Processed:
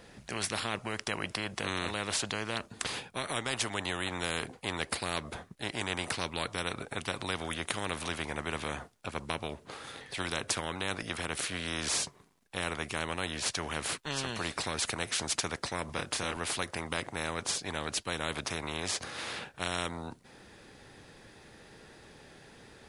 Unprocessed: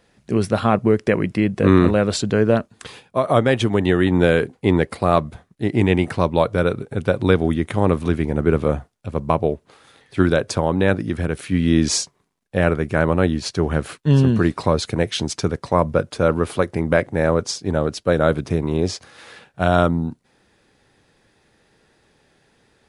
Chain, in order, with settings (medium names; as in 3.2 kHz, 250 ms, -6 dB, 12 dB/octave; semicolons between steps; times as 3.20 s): 15.86–16.37 s: doubling 28 ms -4 dB; spectrum-flattening compressor 4:1; trim -8.5 dB